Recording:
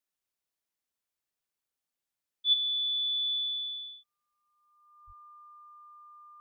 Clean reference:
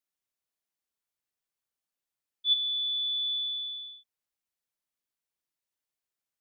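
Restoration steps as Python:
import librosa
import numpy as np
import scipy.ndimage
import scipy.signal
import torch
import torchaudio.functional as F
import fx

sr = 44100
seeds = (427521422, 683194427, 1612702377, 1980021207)

y = fx.notch(x, sr, hz=1200.0, q=30.0)
y = fx.highpass(y, sr, hz=140.0, slope=24, at=(5.06, 5.18), fade=0.02)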